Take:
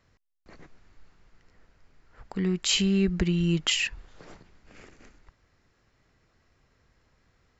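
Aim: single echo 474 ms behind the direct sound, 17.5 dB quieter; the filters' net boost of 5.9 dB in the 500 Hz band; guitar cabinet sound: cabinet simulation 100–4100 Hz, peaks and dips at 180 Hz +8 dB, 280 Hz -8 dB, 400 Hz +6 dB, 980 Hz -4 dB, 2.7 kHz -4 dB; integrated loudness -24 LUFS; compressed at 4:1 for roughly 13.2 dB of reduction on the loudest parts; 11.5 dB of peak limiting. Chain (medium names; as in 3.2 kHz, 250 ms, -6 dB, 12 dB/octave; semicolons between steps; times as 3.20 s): peaking EQ 500 Hz +3.5 dB; compression 4:1, threshold -36 dBFS; peak limiter -32.5 dBFS; cabinet simulation 100–4100 Hz, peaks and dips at 180 Hz +8 dB, 280 Hz -8 dB, 400 Hz +6 dB, 980 Hz -4 dB, 2.7 kHz -4 dB; delay 474 ms -17.5 dB; trim +14.5 dB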